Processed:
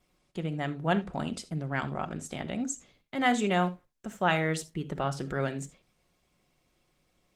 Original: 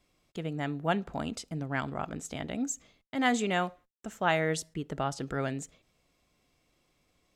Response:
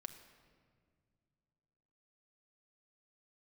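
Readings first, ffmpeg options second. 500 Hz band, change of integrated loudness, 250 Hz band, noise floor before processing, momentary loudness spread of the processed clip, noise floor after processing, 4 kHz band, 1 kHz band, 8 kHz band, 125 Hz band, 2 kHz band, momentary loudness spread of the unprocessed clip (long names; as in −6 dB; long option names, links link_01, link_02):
+1.0 dB, +1.5 dB, +1.5 dB, −73 dBFS, 13 LU, −73 dBFS, +0.5 dB, +1.5 dB, −1.0 dB, +3.0 dB, +1.0 dB, 11 LU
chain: -filter_complex "[1:a]atrim=start_sample=2205,atrim=end_sample=3969[link_01];[0:a][link_01]afir=irnorm=-1:irlink=0,volume=6.5dB" -ar 48000 -c:a libopus -b:a 24k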